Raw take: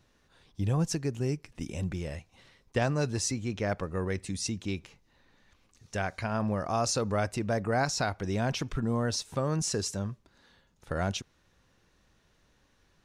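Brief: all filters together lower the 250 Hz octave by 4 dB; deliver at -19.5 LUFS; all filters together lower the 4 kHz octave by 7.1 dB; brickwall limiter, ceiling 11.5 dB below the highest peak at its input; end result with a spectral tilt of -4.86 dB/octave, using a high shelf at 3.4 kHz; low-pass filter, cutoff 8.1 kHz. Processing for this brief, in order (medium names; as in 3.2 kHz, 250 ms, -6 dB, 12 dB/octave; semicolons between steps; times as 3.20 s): low-pass 8.1 kHz; peaking EQ 250 Hz -5.5 dB; treble shelf 3.4 kHz -3 dB; peaking EQ 4 kHz -7 dB; trim +20 dB; peak limiter -9 dBFS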